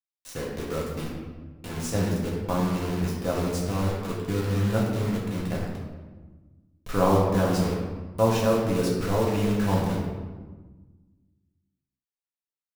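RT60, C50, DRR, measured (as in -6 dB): 1.3 s, 1.5 dB, -4.5 dB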